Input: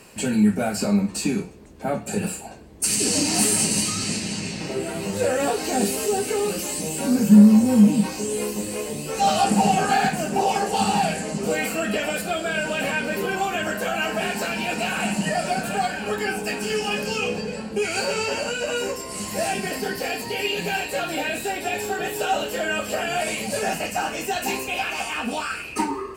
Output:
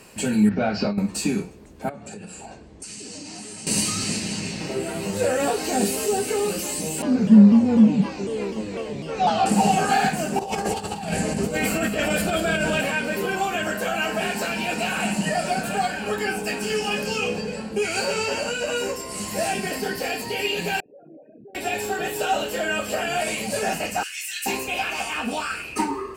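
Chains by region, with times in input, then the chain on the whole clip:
0.49–0.98 s: steep low-pass 5.3 kHz 48 dB/octave + compressor with a negative ratio -23 dBFS
1.89–3.67 s: low-pass 8.2 kHz 24 dB/octave + compression 10:1, threshold -34 dBFS
7.02–9.46 s: distance through air 170 m + vibrato with a chosen wave saw down 4 Hz, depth 160 cents
10.39–12.81 s: bass shelf 160 Hz +11 dB + compressor with a negative ratio -24 dBFS, ratio -0.5 + delay 189 ms -10 dB
20.80–21.55 s: resonances exaggerated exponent 3 + ladder band-pass 190 Hz, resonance 30% + distance through air 320 m
24.03–24.46 s: steep high-pass 1.8 kHz + peaking EQ 10 kHz +5.5 dB 0.56 oct
whole clip: none

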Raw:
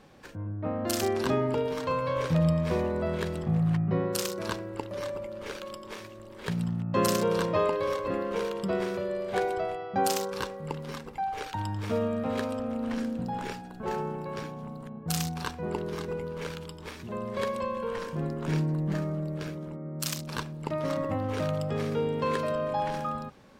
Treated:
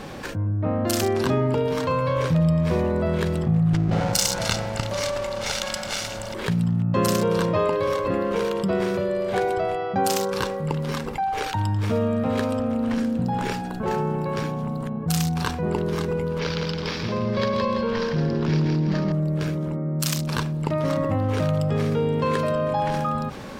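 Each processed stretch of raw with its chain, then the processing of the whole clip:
3.73–6.34 s: comb filter that takes the minimum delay 1.4 ms + peaking EQ 5.8 kHz +11.5 dB 1.9 oct
16.39–19.12 s: resonant high shelf 6.7 kHz -11 dB, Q 3 + feedback delay 165 ms, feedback 35%, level -4.5 dB
whole clip: dynamic bell 120 Hz, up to +6 dB, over -44 dBFS, Q 0.97; level flattener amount 50%

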